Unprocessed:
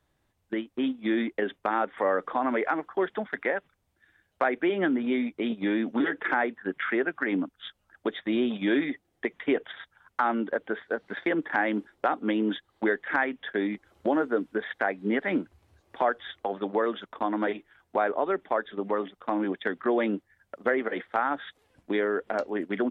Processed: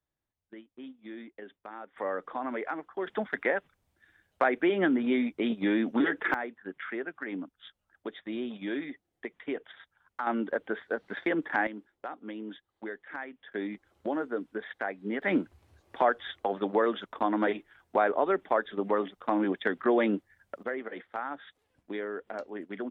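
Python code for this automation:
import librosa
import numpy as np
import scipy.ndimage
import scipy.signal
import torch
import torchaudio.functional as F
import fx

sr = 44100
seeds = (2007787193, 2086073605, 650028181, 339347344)

y = fx.gain(x, sr, db=fx.steps((0.0, -17.0), (1.96, -7.5), (3.07, 0.0), (6.34, -9.0), (10.27, -2.0), (11.67, -13.5), (13.52, -6.5), (15.22, 0.5), (20.63, -9.0)))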